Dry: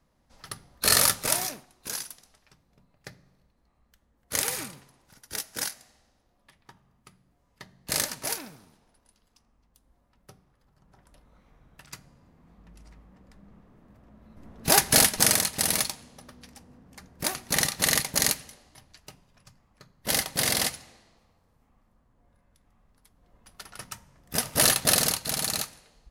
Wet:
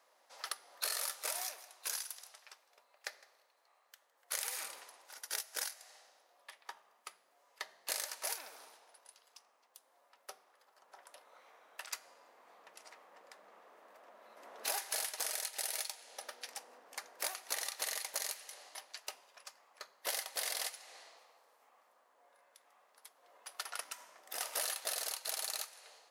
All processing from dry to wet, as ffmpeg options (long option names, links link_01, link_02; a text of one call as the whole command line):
ffmpeg -i in.wav -filter_complex "[0:a]asettb=1/sr,asplit=3[link_01][link_02][link_03];[link_01]atrim=end=1.424[link_04];[link_02]atrim=start=1.42:end=4.64,asetpts=PTS-STARTPTS,afade=type=in:duration=0.004:curve=qsin,afade=type=out:start_time=3.216:duration=0.004:curve=qsin,highpass=frequency=520:poles=1,aecho=1:1:159:0.0668,atrim=end_sample=142002[link_05];[link_03]atrim=start=4.636[link_06];[link_04][link_05]acrossfade=duration=0.004:curve1=hsin:curve2=qsin[link_07];[link_07][link_06]acrossfade=duration=0.004:curve1=qsin:curve2=hsin,asettb=1/sr,asplit=3[link_08][link_09][link_10];[link_08]atrim=end=15.324[link_11];[link_09]atrim=start=15.32:end=16.49,asetpts=PTS-STARTPTS,afade=type=in:duration=0.004:curve=qsin,afade=type=out:start_time=1.166:duration=0.004:curve=qsin,highpass=260,bandreject=frequency=1100:width=5.3[link_12];[link_10]atrim=start=16.486[link_13];[link_11][link_12]acrossfade=duration=0.004:curve1=hsin:curve2=qsin[link_14];[link_14][link_13]acrossfade=duration=0.004:curve1=qsin:curve2=hsin,asettb=1/sr,asplit=3[link_15][link_16][link_17];[link_15]atrim=end=23.804[link_18];[link_16]atrim=start=23.8:end=24.41,asetpts=PTS-STARTPTS,afade=type=in:duration=0.004:curve=qsin,afade=type=out:start_time=0.606:duration=0.004:curve=qsin,acompressor=threshold=-44dB:ratio=4:attack=3.2:release=140:knee=1:detection=peak,afreqshift=52[link_19];[link_17]atrim=start=24.406[link_20];[link_18][link_19]acrossfade=duration=0.004:curve1=hsin:curve2=qsin[link_21];[link_21][link_20]acrossfade=duration=0.004:curve1=qsin:curve2=hsin,highpass=frequency=520:width=0.5412,highpass=frequency=520:width=1.3066,alimiter=limit=-12dB:level=0:latency=1:release=46,acompressor=threshold=-43dB:ratio=5,volume=5.5dB" out.wav